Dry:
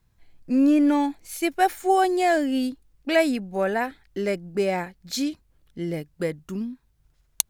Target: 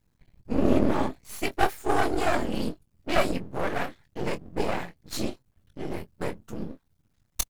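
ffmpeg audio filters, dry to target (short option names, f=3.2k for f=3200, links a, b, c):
-filter_complex "[0:a]afftfilt=real='hypot(re,im)*cos(2*PI*random(0))':imag='hypot(re,im)*sin(2*PI*random(1))':win_size=512:overlap=0.75,aeval=exprs='max(val(0),0)':c=same,asplit=2[a][b];[b]adelay=23,volume=-11dB[c];[a][c]amix=inputs=2:normalize=0,volume=5.5dB"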